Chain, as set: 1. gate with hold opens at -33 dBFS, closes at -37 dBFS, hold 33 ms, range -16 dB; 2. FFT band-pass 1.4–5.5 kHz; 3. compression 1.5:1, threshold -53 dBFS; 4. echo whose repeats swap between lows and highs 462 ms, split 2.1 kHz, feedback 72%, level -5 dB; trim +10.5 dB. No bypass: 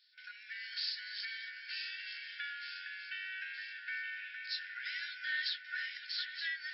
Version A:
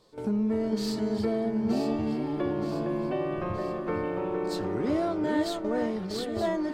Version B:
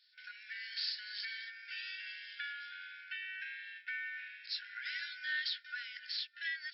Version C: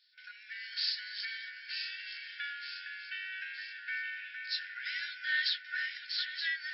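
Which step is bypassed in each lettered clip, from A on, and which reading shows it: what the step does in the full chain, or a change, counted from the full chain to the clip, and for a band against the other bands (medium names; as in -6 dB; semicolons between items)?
2, crest factor change -5.0 dB; 4, momentary loudness spread change +1 LU; 3, momentary loudness spread change +3 LU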